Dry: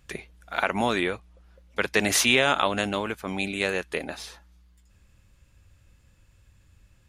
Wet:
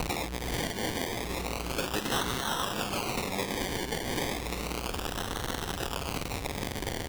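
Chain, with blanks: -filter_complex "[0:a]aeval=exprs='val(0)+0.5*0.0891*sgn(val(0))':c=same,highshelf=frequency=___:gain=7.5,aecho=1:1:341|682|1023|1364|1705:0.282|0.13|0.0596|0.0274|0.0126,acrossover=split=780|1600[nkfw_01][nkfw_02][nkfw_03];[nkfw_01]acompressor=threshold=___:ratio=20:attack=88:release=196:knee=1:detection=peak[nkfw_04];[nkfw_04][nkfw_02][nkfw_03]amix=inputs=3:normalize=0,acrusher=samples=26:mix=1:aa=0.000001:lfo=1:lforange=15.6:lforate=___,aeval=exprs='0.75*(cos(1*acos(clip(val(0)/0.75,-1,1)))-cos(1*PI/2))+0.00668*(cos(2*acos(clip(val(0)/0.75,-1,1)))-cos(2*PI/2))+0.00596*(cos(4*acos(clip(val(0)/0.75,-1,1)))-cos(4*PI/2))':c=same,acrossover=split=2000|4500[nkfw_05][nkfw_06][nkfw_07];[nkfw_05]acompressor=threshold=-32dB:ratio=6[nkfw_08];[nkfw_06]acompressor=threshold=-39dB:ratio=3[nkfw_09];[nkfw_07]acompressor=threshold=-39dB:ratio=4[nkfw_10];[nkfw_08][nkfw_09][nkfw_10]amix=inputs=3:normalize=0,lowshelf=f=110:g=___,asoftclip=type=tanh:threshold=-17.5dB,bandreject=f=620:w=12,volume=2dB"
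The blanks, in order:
3600, -32dB, 0.32, -2.5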